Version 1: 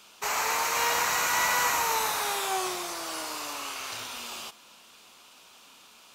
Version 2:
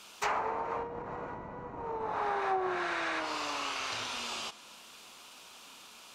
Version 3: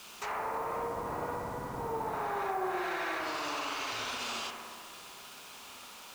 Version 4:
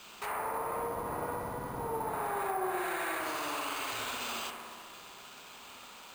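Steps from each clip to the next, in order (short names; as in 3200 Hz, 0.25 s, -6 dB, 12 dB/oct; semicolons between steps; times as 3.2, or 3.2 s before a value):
spectral repair 2.23–3.18, 1300–9200 Hz before; treble ducked by the level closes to 310 Hz, closed at -22 dBFS; gain +1.5 dB
limiter -30 dBFS, peak gain reduction 10.5 dB; bit-crush 9-bit; analogue delay 64 ms, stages 1024, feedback 81%, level -5.5 dB; gain +1.5 dB
careless resampling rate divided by 4×, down filtered, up hold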